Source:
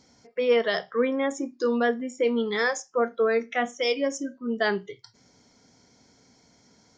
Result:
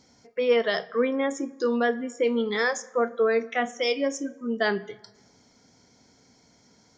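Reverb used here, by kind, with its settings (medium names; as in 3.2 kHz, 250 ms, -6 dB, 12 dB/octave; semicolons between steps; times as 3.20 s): plate-style reverb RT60 1.3 s, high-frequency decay 0.55×, DRR 19 dB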